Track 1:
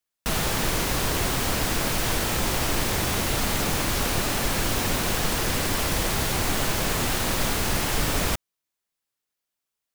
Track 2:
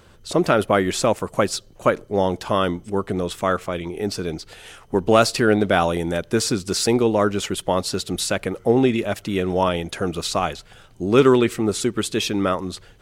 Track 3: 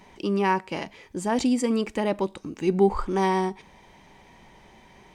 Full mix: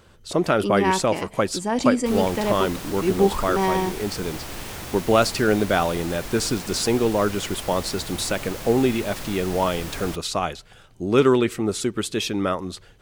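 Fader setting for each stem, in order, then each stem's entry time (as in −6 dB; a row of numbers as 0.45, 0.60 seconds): −10.0, −2.5, +1.0 decibels; 1.80, 0.00, 0.40 seconds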